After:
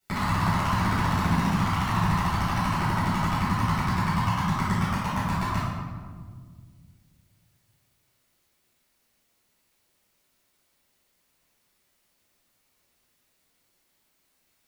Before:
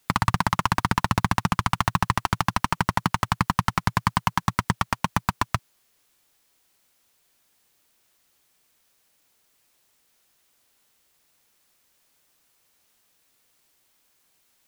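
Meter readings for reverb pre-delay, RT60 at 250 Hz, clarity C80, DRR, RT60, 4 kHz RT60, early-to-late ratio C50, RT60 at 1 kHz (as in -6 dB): 10 ms, 2.7 s, 0.5 dB, -13.0 dB, 1.8 s, 0.95 s, -2.0 dB, 1.5 s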